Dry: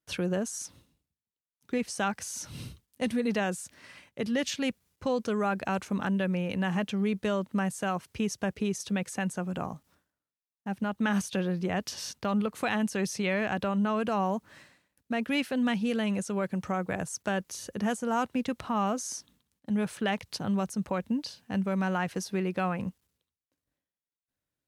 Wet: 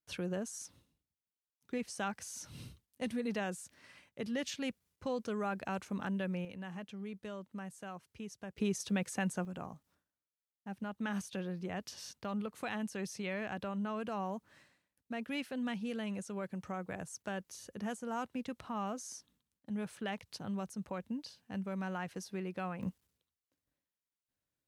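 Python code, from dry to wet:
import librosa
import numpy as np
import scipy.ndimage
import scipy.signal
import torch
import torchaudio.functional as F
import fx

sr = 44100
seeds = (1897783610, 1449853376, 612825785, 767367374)

y = fx.gain(x, sr, db=fx.steps((0.0, -8.0), (6.45, -15.5), (8.58, -3.5), (9.45, -10.0), (22.83, -3.0)))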